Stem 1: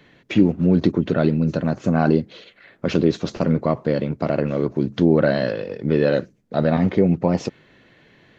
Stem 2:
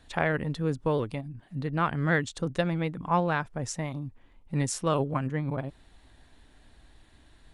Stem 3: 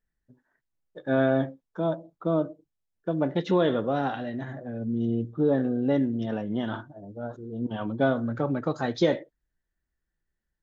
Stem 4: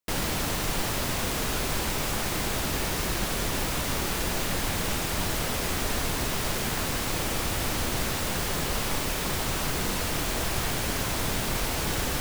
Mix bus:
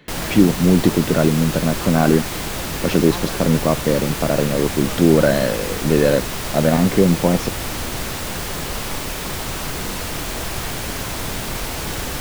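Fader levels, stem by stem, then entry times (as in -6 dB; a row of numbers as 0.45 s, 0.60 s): +2.5 dB, -9.0 dB, mute, +2.5 dB; 0.00 s, 0.00 s, mute, 0.00 s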